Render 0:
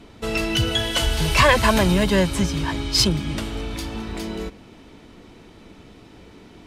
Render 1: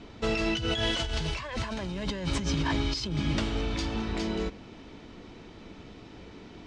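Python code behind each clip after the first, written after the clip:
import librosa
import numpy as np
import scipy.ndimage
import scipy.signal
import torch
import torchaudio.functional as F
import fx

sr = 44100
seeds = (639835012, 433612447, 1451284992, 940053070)

y = scipy.signal.sosfilt(scipy.signal.butter(4, 6700.0, 'lowpass', fs=sr, output='sos'), x)
y = fx.over_compress(y, sr, threshold_db=-25.0, ratio=-1.0)
y = y * librosa.db_to_amplitude(-5.0)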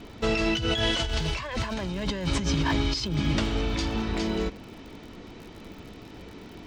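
y = fx.dmg_crackle(x, sr, seeds[0], per_s=64.0, level_db=-42.0)
y = y * librosa.db_to_amplitude(3.0)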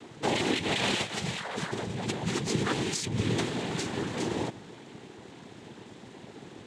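y = fx.noise_vocoder(x, sr, seeds[1], bands=6)
y = y + 10.0 ** (-22.0 / 20.0) * np.pad(y, (int(282 * sr / 1000.0), 0))[:len(y)]
y = y * librosa.db_to_amplitude(-2.0)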